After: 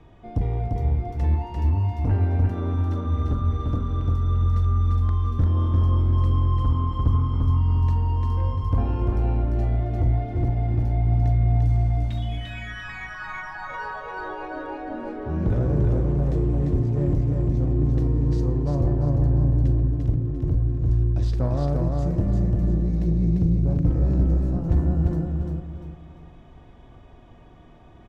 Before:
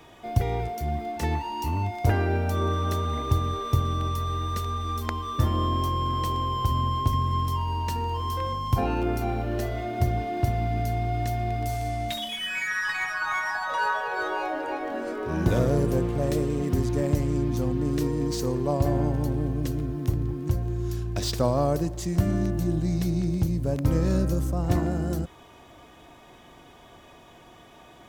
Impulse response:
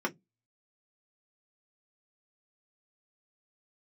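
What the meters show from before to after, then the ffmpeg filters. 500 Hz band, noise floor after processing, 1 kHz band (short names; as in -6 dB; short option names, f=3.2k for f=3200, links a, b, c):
-3.5 dB, -47 dBFS, -6.5 dB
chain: -filter_complex "[0:a]aemphasis=mode=reproduction:type=riaa,asoftclip=type=tanh:threshold=-9.5dB,asplit=2[a][b];[b]adelay=42,volume=-12.5dB[c];[a][c]amix=inputs=2:normalize=0,aecho=1:1:346|692|1038|1384:0.708|0.241|0.0818|0.0278,volume=-7dB"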